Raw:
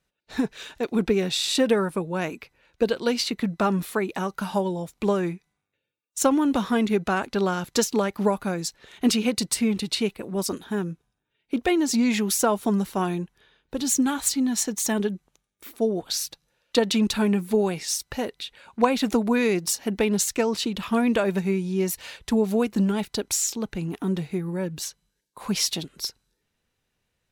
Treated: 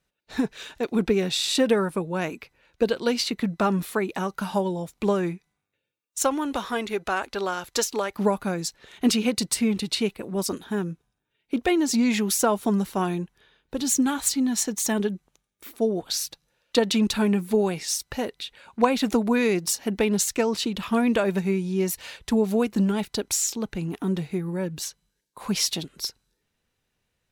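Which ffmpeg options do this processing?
-filter_complex "[0:a]asettb=1/sr,asplit=3[a][b][c];[a]atrim=end=6.194[d];[b]atrim=start=6.19:end=8.15,asetpts=PTS-STARTPTS,afade=t=in:d=0.004:c=qsin,afade=t=out:st=1.956:d=0.004:c=qsin,equalizer=f=180:w=0.94:g=-13.5[e];[c]atrim=start=8.146[f];[d][e]acrossfade=d=0.004:c1=hsin:c2=qsin[g];[g][f]acrossfade=d=0.004:c1=qsin:c2=hsin"

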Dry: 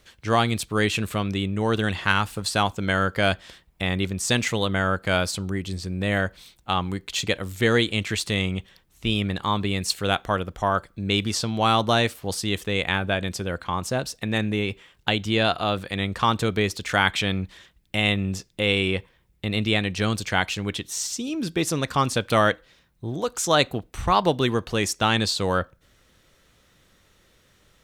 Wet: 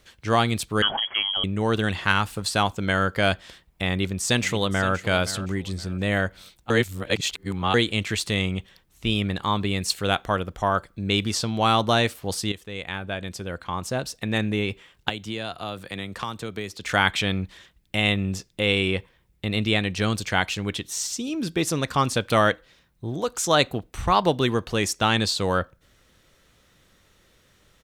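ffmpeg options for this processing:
-filter_complex "[0:a]asettb=1/sr,asplit=3[a][b][c];[a]atrim=end=0.824[d];[b]atrim=start=0.82:end=1.44,asetpts=PTS-STARTPTS,afade=t=in:d=0.004:c=qsin,afade=t=out:st=0.616:d=0.004:c=qsin,lowpass=f=2.9k:t=q:w=0.5098,lowpass=f=2.9k:t=q:w=0.6013,lowpass=f=2.9k:t=q:w=0.9,lowpass=f=2.9k:t=q:w=2.563,afreqshift=-3400[e];[c]atrim=start=1.436[f];[d][e]acrossfade=d=0.004:c1=hsin:c2=qsin[g];[g][f]acrossfade=d=0.004:c1=qsin:c2=hsin,asplit=2[h][i];[i]afade=t=in:st=3.9:d=0.01,afade=t=out:st=4.93:d=0.01,aecho=0:1:520|1040|1560:0.199526|0.0598579|0.0179574[j];[h][j]amix=inputs=2:normalize=0,asettb=1/sr,asplit=3[k][l][m];[k]atrim=end=15.094[n];[l]atrim=start=15.09:end=16.84,asetpts=PTS-STARTPTS,afade=t=in:d=0.004:c=qsin,afade=t=out:st=1.746:d=0.004:c=qsin,acrossover=split=140|6600[o][p][q];[o]acompressor=threshold=-45dB:ratio=4[r];[p]acompressor=threshold=-30dB:ratio=4[s];[q]acompressor=threshold=-49dB:ratio=4[t];[r][s][t]amix=inputs=3:normalize=0[u];[m]atrim=start=16.836[v];[n][u]acrossfade=d=0.004:c1=hsin:c2=qsin[w];[w][v]acrossfade=d=0.004:c1=qsin:c2=hsin,asplit=4[x][y][z][aa];[x]atrim=end=6.702[ab];[y]atrim=start=6.698:end=7.742,asetpts=PTS-STARTPTS,areverse[ac];[z]atrim=start=7.738:end=12.52,asetpts=PTS-STARTPTS,afade=t=out:st=4.778:d=0.004:c=hsin:silence=0.237137[ad];[aa]atrim=start=12.52,asetpts=PTS-STARTPTS,afade=t=in:d=1.83:silence=0.237137[ae];[ab][ac]acrossfade=d=0.004:c1=hsin:c2=hsin[af];[ad][ae]concat=n=2:v=0:a=1[ag];[af][ag]acrossfade=d=0.004:c1=hsin:c2=hsin"

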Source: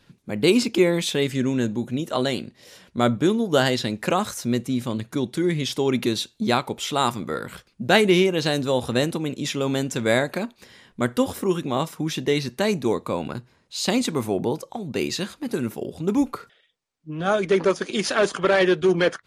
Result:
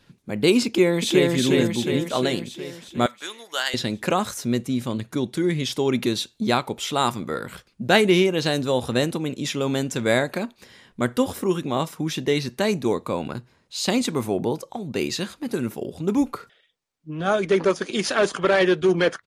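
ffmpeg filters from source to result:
-filter_complex "[0:a]asplit=2[a][b];[b]afade=t=in:st=0.66:d=0.01,afade=t=out:st=1.31:d=0.01,aecho=0:1:360|720|1080|1440|1800|2160|2520|2880|3240:0.891251|0.534751|0.32085|0.19251|0.115506|0.0693037|0.0415822|0.0249493|0.0149696[c];[a][c]amix=inputs=2:normalize=0,asettb=1/sr,asplit=3[d][e][f];[d]atrim=end=3.064[g];[e]atrim=start=3.06:end=3.74,asetpts=PTS-STARTPTS,afade=t=in:d=0.004:c=qsin,afade=t=out:st=0.676:d=0.004:c=qsin,highpass=1.3k[h];[f]atrim=start=3.736[i];[g][h]acrossfade=d=0.004:c1=hsin:c2=qsin[j];[j][i]acrossfade=d=0.004:c1=qsin:c2=hsin"

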